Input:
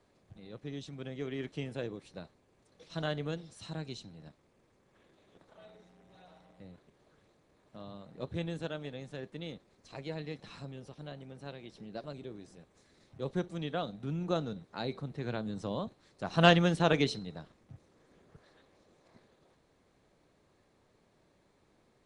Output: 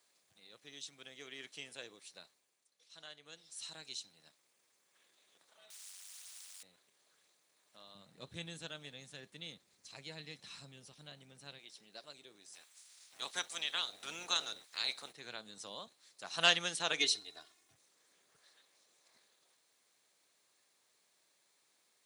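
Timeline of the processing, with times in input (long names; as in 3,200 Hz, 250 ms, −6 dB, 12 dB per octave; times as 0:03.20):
0:02.23–0:03.66: duck −10.5 dB, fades 0.44 s
0:05.70–0:06.63: every bin compressed towards the loudest bin 10 to 1
0:07.95–0:11.59: bass and treble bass +15 dB, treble −1 dB
0:12.52–0:15.11: ceiling on every frequency bin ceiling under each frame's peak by 20 dB
0:16.99–0:17.74: comb filter 2.8 ms, depth 94%
whole clip: first difference; level +8.5 dB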